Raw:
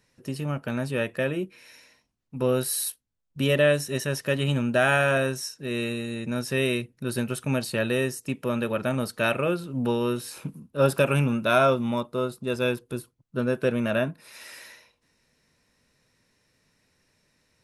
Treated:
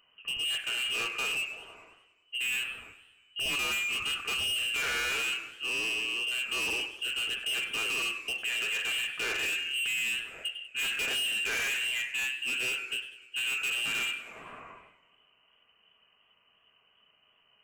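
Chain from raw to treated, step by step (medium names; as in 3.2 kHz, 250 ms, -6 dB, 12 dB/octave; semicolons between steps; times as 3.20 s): bass shelf 73 Hz +11 dB; on a send at -4 dB: reverberation RT60 0.55 s, pre-delay 3 ms; on the sum: frequency inversion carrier 3 kHz; in parallel at +2 dB: peak limiter -17.5 dBFS, peak gain reduction 10 dB; on the sum: hard clipper -21.5 dBFS, distortion -6 dB; modulated delay 100 ms, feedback 63%, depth 156 cents, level -16.5 dB; trim -8 dB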